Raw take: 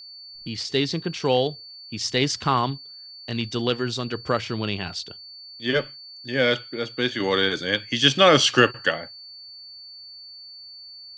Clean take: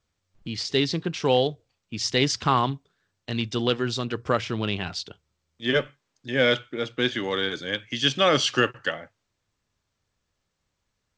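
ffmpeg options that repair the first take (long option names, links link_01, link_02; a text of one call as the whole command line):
ffmpeg -i in.wav -af "bandreject=frequency=4500:width=30,asetnsamples=nb_out_samples=441:pad=0,asendcmd='7.2 volume volume -5dB',volume=0dB" out.wav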